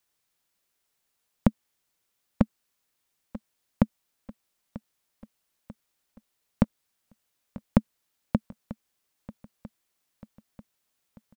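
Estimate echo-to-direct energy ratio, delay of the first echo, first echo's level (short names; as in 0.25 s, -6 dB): -17.0 dB, 0.941 s, -18.5 dB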